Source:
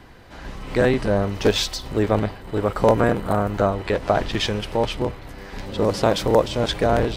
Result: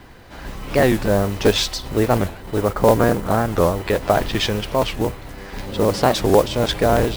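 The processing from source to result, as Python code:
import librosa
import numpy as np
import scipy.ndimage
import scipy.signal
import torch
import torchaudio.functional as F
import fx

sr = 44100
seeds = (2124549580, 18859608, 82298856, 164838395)

y = fx.high_shelf(x, sr, hz=3600.0, db=-10.5, at=(2.65, 3.25))
y = fx.mod_noise(y, sr, seeds[0], snr_db=20)
y = fx.record_warp(y, sr, rpm=45.0, depth_cents=250.0)
y = F.gain(torch.from_numpy(y), 2.5).numpy()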